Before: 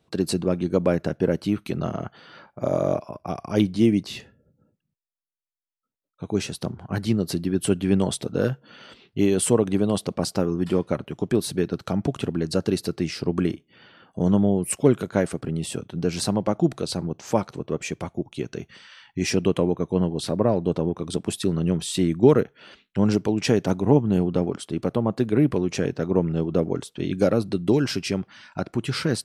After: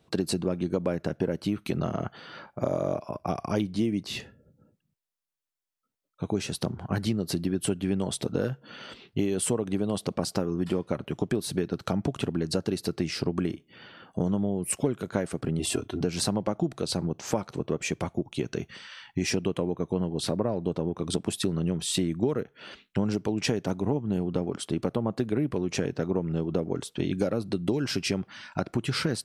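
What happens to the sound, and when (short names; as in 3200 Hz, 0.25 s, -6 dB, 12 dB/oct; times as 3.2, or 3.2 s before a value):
15.59–16.01 comb 2.9 ms, depth 94%
whole clip: compressor 6:1, threshold -26 dBFS; gain +2.5 dB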